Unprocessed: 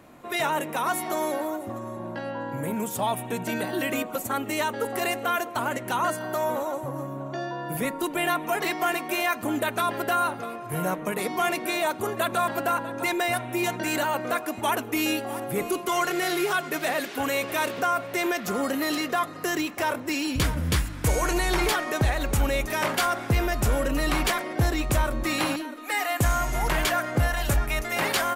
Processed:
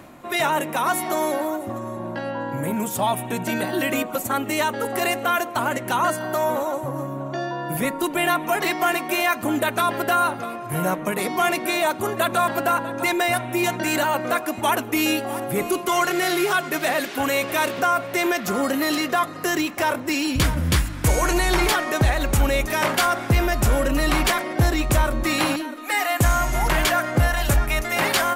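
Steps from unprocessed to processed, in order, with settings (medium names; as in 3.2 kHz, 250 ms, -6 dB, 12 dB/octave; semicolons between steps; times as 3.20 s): band-stop 450 Hz, Q 12; reverse; upward compressor, threshold -36 dBFS; reverse; trim +4.5 dB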